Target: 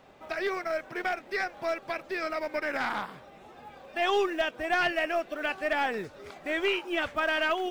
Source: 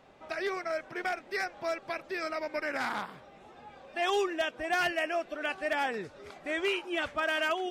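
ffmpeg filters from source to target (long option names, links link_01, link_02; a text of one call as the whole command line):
ffmpeg -i in.wav -filter_complex "[0:a]acrusher=bits=7:mode=log:mix=0:aa=0.000001,aeval=exprs='0.0891*(cos(1*acos(clip(val(0)/0.0891,-1,1)))-cos(1*PI/2))+0.00631*(cos(2*acos(clip(val(0)/0.0891,-1,1)))-cos(2*PI/2))+0.000631*(cos(6*acos(clip(val(0)/0.0891,-1,1)))-cos(6*PI/2))':channel_layout=same,acrossover=split=5100[link_01][link_02];[link_02]acompressor=threshold=-57dB:ratio=4:attack=1:release=60[link_03];[link_01][link_03]amix=inputs=2:normalize=0,volume=2.5dB" out.wav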